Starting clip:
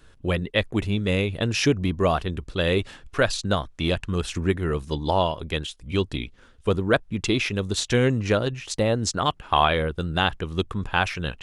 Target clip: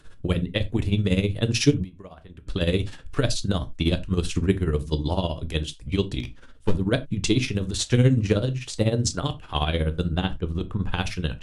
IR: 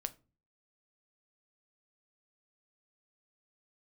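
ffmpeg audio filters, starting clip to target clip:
-filter_complex "[0:a]tremolo=f=16:d=0.8,asplit=3[link_01][link_02][link_03];[link_01]afade=type=out:start_time=6.19:duration=0.02[link_04];[link_02]aeval=exprs='clip(val(0),-1,0.0211)':channel_layout=same,afade=type=in:start_time=6.19:duration=0.02,afade=type=out:start_time=6.73:duration=0.02[link_05];[link_03]afade=type=in:start_time=6.73:duration=0.02[link_06];[link_04][link_05][link_06]amix=inputs=3:normalize=0,asettb=1/sr,asplit=3[link_07][link_08][link_09];[link_07]atrim=end=10.114[link_10];[link_08]atrim=start=10.11:end=10.89,asetpts=PTS-STARTPTS,afade=type=in:duration=0.004:curve=qsin,afade=type=out:start_time=0.776:duration=0.004:curve=qsin,highshelf=frequency=2200:gain=-8[link_11];[link_09]atrim=start=10.886[link_12];[link_10][link_11]acrossfade=duration=0.004:curve1=hsin:curve2=qsin[link_13];[link_13][link_12]acrossfade=duration=0.004:curve1=qsin:curve2=hsin[link_14];[1:a]atrim=start_sample=2205,atrim=end_sample=4410[link_15];[link_14][link_15]afir=irnorm=-1:irlink=0,asettb=1/sr,asplit=3[link_16][link_17][link_18];[link_16]atrim=end=1.844[link_19];[link_17]atrim=start=1.84:end=2.47,asetpts=PTS-STARTPTS,afade=type=in:duration=0.004:curve=qsin,afade=type=out:start_time=0.626:duration=0.004:curve=qsin,acompressor=threshold=-49dB:ratio=6[link_20];[link_18]atrim=start=2.466[link_21];[link_19][link_20]acrossfade=duration=0.004:curve1=hsin:curve2=qsin[link_22];[link_22][link_21]acrossfade=duration=0.004:curve1=qsin:curve2=hsin,lowshelf=frequency=120:gain=3.5,acrossover=split=440|3000[link_23][link_24][link_25];[link_24]acompressor=threshold=-46dB:ratio=2[link_26];[link_23][link_26][link_25]amix=inputs=3:normalize=0,volume=6dB" -ar 32000 -c:a libvorbis -b:a 64k

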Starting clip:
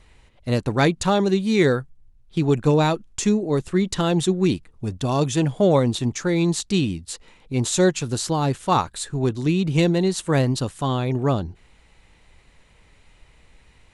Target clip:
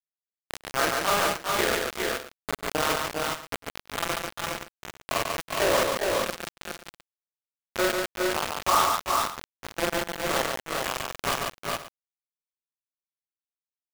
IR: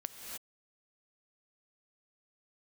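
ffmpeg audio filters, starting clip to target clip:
-filter_complex "[0:a]afftfilt=real='re':imag='-im':win_size=4096:overlap=0.75,aeval=exprs='val(0)+0.0251*sin(2*PI*670*n/s)':channel_layout=same,highpass=frequency=390:width=0.5412,highpass=frequency=390:width=1.3066,equalizer=frequency=430:width_type=q:width=4:gain=-4,equalizer=frequency=810:width_type=q:width=4:gain=-6,equalizer=frequency=1200:width_type=q:width=4:gain=8,lowpass=frequency=2200:width=0.5412,lowpass=frequency=2200:width=1.3066,acrusher=bits=3:mix=0:aa=0.000001,asplit=2[link_01][link_02];[link_02]aecho=0:1:100|142|395|414|469|529:0.1|0.631|0.335|0.631|0.133|0.141[link_03];[link_01][link_03]amix=inputs=2:normalize=0"

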